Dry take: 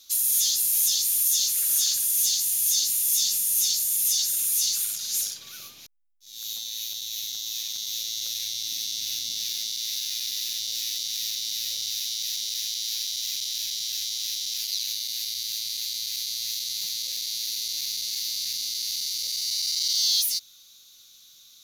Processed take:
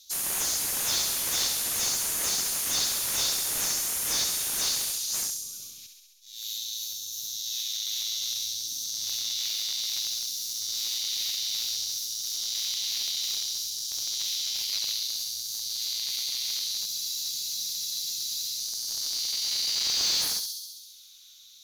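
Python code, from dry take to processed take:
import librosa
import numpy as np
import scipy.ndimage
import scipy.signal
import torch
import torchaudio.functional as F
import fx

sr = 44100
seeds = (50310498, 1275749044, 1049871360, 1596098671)

y = fx.phaser_stages(x, sr, stages=2, low_hz=320.0, high_hz=1800.0, hz=0.6, feedback_pct=45)
y = fx.echo_thinned(y, sr, ms=67, feedback_pct=73, hz=460.0, wet_db=-6.5)
y = fx.spec_freeze(y, sr, seeds[0], at_s=16.89, hold_s=1.69)
y = fx.slew_limit(y, sr, full_power_hz=560.0)
y = y * librosa.db_to_amplitude(-3.5)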